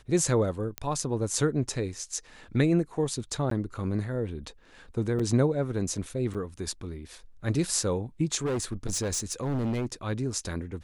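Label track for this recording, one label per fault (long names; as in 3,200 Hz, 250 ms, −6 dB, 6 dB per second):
0.780000	0.780000	click −15 dBFS
3.500000	3.510000	drop-out 13 ms
5.190000	5.200000	drop-out 5.9 ms
6.340000	6.350000	drop-out 7.1 ms
8.450000	9.860000	clipping −25.5 dBFS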